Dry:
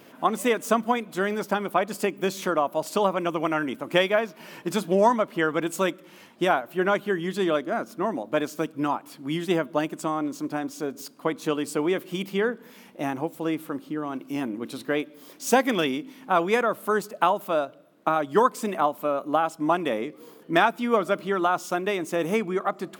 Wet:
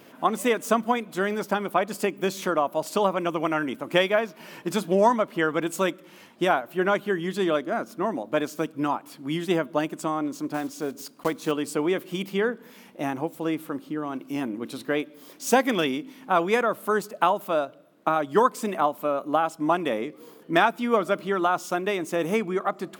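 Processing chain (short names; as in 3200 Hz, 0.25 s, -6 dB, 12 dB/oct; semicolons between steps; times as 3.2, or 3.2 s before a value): 10.54–11.53 block floating point 5-bit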